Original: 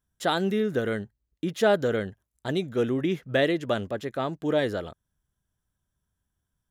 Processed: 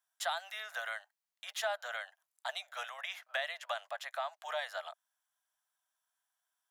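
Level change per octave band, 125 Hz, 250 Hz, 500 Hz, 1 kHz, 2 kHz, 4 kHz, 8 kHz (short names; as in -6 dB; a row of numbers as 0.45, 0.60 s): under -40 dB, under -40 dB, -17.5 dB, -7.0 dB, -5.5 dB, -5.5 dB, n/a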